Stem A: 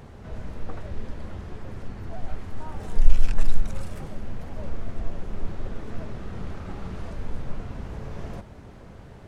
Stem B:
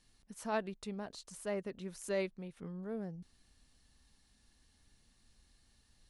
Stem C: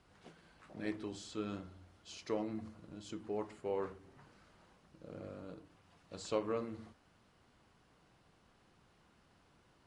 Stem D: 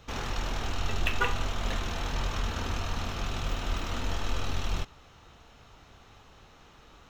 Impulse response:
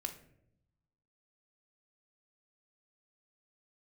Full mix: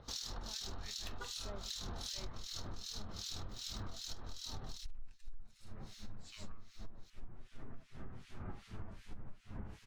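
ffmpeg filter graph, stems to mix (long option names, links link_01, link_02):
-filter_complex "[0:a]asoftclip=type=tanh:threshold=-6dB,flanger=delay=7.6:depth=2.2:regen=45:speed=0.33:shape=sinusoidal,equalizer=frequency=510:width_type=o:width=0.72:gain=-6,adelay=1800,volume=-0.5dB[link_01];[1:a]volume=-8dB[link_02];[2:a]highpass=frequency=1300:width=0.5412,highpass=frequency=1300:width=1.3066,volume=1.5dB,asplit=2[link_03][link_04];[link_04]volume=-7dB[link_05];[3:a]acompressor=threshold=-37dB:ratio=1.5,highshelf=frequency=3300:width_type=q:width=3:gain=9.5,acompressor=mode=upward:threshold=-48dB:ratio=2.5,volume=-3.5dB[link_06];[link_05]aecho=0:1:188:1[link_07];[link_01][link_02][link_03][link_06][link_07]amix=inputs=5:normalize=0,asoftclip=type=tanh:threshold=-10.5dB,acrossover=split=2000[link_08][link_09];[link_08]aeval=exprs='val(0)*(1-1/2+1/2*cos(2*PI*2.6*n/s))':channel_layout=same[link_10];[link_09]aeval=exprs='val(0)*(1-1/2-1/2*cos(2*PI*2.6*n/s))':channel_layout=same[link_11];[link_10][link_11]amix=inputs=2:normalize=0,acompressor=threshold=-39dB:ratio=16"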